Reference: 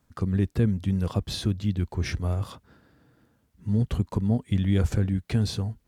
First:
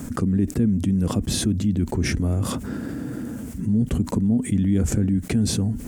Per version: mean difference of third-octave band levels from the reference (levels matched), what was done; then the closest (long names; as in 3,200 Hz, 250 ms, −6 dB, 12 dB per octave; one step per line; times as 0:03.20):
6.0 dB: graphic EQ with 10 bands 250 Hz +12 dB, 1,000 Hz −5 dB, 4,000 Hz −8 dB, 8,000 Hz +8 dB
envelope flattener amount 70%
level −5.5 dB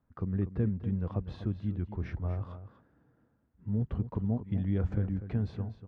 4.5 dB: low-pass filter 1,500 Hz 12 dB per octave
on a send: single-tap delay 244 ms −12 dB
on the sum: level −7 dB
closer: second